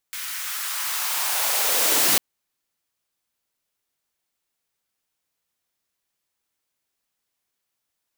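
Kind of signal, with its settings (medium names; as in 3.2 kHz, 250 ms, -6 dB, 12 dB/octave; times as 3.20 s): swept filtered noise white, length 2.05 s highpass, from 1.6 kHz, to 190 Hz, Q 1.7, linear, gain ramp +15 dB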